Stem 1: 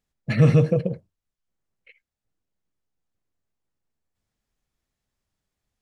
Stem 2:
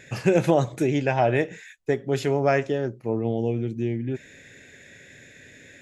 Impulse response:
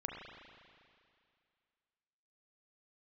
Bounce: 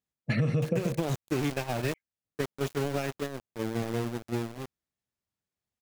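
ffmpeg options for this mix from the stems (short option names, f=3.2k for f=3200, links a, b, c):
-filter_complex "[0:a]highpass=83,acompressor=threshold=-15dB:ratio=6,volume=1dB[a];[1:a]acrossover=split=280|3000[b][c][d];[c]acompressor=threshold=-26dB:ratio=10[e];[b][e][d]amix=inputs=3:normalize=0,aeval=exprs='val(0)*gte(abs(val(0)),0.0501)':c=same,adelay=500,volume=-1.5dB[f];[a][f]amix=inputs=2:normalize=0,agate=range=-10dB:threshold=-27dB:ratio=16:detection=peak,acompressor=threshold=-24dB:ratio=6"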